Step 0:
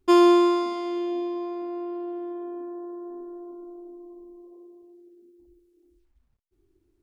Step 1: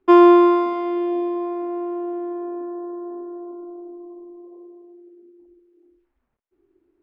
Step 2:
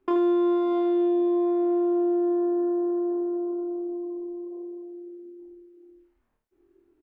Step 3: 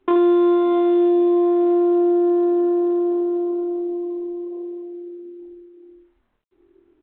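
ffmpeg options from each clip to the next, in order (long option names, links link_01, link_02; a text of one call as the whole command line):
ffmpeg -i in.wav -filter_complex "[0:a]acrossover=split=240 2500:gain=0.141 1 0.0631[link_01][link_02][link_03];[link_01][link_02][link_03]amix=inputs=3:normalize=0,volume=7dB" out.wav
ffmpeg -i in.wav -filter_complex "[0:a]acompressor=threshold=-25dB:ratio=16,asplit=2[link_01][link_02];[link_02]adelay=26,volume=-4dB[link_03];[link_01][link_03]amix=inputs=2:normalize=0,asplit=2[link_04][link_05];[link_05]aecho=0:1:52|78:0.355|0.251[link_06];[link_04][link_06]amix=inputs=2:normalize=0,volume=-1dB" out.wav
ffmpeg -i in.wav -af "volume=6.5dB" -ar 8000 -c:a adpcm_g726 -b:a 32k out.wav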